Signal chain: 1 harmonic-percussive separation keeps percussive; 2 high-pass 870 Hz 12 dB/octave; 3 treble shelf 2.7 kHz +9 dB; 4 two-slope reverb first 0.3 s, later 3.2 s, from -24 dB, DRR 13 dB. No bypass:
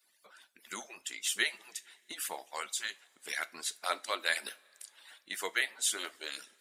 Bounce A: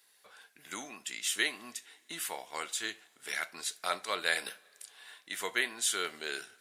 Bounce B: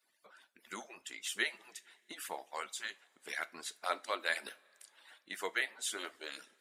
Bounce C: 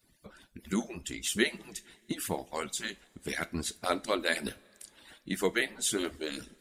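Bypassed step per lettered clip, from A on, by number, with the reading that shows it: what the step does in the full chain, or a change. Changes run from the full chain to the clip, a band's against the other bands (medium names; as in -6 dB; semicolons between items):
1, 250 Hz band +4.5 dB; 3, 8 kHz band -7.0 dB; 2, 250 Hz band +19.0 dB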